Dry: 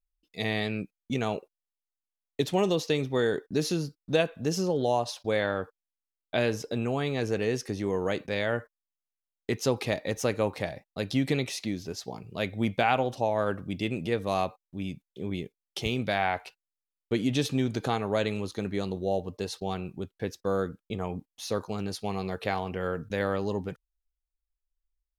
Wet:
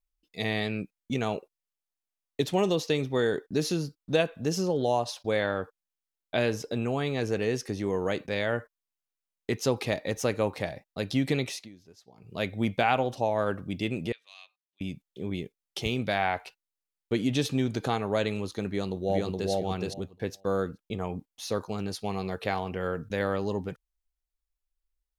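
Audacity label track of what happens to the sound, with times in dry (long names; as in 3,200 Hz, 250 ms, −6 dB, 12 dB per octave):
11.500000	12.350000	duck −18 dB, fades 0.19 s
14.120000	14.810000	four-pole ladder band-pass 3,500 Hz, resonance 35%
18.670000	19.510000	delay throw 420 ms, feedback 15%, level −1 dB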